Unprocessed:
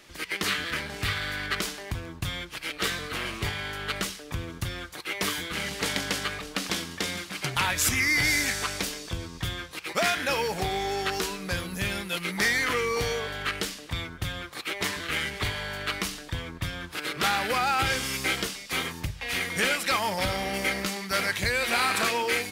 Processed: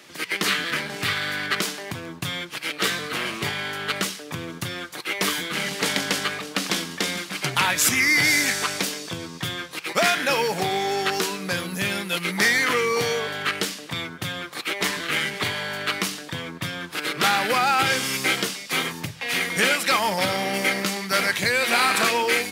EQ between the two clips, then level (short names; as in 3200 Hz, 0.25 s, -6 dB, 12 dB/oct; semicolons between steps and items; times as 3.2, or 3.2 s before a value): HPF 130 Hz 24 dB/oct; +5.0 dB